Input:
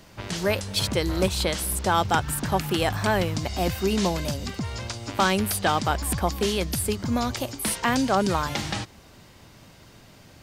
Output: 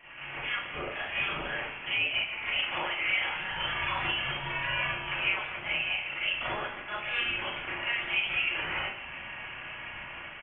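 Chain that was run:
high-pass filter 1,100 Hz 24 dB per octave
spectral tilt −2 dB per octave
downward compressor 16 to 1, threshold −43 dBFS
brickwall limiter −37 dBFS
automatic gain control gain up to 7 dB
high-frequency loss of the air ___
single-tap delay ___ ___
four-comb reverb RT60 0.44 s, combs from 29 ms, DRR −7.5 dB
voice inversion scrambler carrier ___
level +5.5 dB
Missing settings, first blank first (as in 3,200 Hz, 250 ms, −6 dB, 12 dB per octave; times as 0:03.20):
180 metres, 147 ms, −13 dB, 3,800 Hz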